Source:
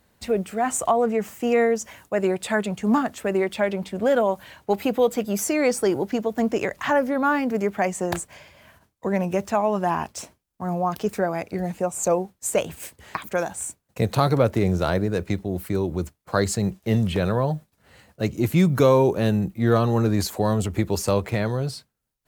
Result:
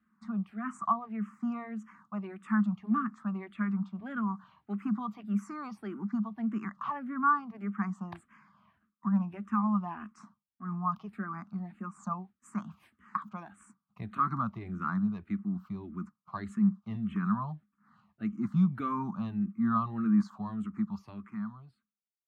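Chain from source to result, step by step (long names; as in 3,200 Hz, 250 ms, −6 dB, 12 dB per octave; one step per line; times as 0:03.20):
fade-out on the ending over 2.21 s
pair of resonant band-passes 500 Hz, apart 2.5 octaves
frequency shifter mixed with the dry sound −1.7 Hz
level +3.5 dB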